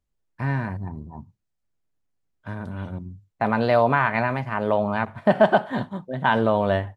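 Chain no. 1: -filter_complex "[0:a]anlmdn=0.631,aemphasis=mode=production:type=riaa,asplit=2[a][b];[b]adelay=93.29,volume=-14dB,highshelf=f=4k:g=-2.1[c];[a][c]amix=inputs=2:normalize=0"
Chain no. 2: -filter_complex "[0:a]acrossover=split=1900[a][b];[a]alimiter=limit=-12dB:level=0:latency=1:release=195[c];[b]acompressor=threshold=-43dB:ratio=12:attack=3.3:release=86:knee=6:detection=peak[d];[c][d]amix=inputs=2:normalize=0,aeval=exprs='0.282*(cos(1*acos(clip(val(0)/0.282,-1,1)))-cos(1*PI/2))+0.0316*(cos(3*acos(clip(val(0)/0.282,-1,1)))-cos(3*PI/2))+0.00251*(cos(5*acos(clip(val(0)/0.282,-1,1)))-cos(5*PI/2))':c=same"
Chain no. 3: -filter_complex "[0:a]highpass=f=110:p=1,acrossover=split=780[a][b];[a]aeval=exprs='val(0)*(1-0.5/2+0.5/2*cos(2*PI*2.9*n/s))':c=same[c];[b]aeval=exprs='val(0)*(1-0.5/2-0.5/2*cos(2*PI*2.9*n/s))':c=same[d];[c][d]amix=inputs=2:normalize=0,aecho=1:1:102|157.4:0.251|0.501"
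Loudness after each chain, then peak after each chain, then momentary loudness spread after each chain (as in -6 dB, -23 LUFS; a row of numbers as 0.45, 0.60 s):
-23.5, -28.0, -24.0 LUFS; -4.5, -10.5, -6.5 dBFS; 20, 15, 19 LU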